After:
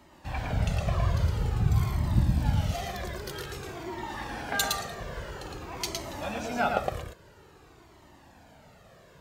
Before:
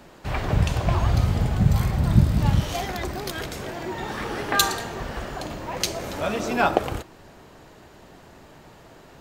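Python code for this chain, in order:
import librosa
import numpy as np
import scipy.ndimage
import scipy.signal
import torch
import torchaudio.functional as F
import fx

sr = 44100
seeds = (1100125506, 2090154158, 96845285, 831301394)

y = scipy.signal.sosfilt(scipy.signal.butter(2, 40.0, 'highpass', fs=sr, output='sos'), x)
y = y + 10.0 ** (-3.5 / 20.0) * np.pad(y, (int(112 * sr / 1000.0), 0))[:len(y)]
y = fx.comb_cascade(y, sr, direction='falling', hz=0.5)
y = F.gain(torch.from_numpy(y), -3.5).numpy()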